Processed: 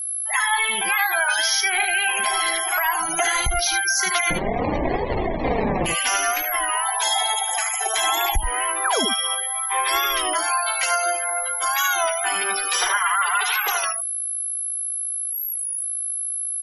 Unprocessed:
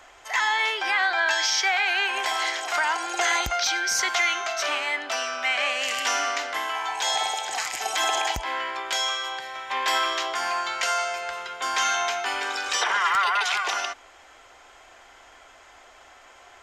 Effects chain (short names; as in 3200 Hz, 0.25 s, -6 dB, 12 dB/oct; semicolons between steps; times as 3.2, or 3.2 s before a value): octaver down 1 oct, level -1 dB; low shelf 68 Hz +10.5 dB; whine 11000 Hz -33 dBFS; high shelf 12000 Hz +9 dB; 4.3–5.86 sample-rate reducer 1400 Hz, jitter 20%; 8.84–9.05 painted sound fall 210–1900 Hz -24 dBFS; echo 79 ms -6.5 dB; spectral gate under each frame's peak -20 dB strong; flange 0.59 Hz, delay 1.9 ms, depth 4.2 ms, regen +28%; compressor 2.5:1, threshold -26 dBFS, peak gain reduction 6.5 dB; record warp 33 1/3 rpm, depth 100 cents; gain +7.5 dB